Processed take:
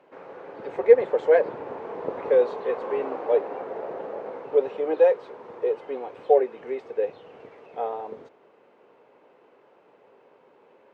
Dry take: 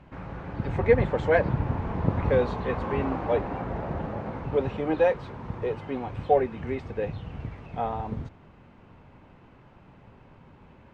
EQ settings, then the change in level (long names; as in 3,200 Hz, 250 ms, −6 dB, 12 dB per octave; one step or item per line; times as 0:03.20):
high-pass with resonance 450 Hz, resonance Q 3.4
−4.5 dB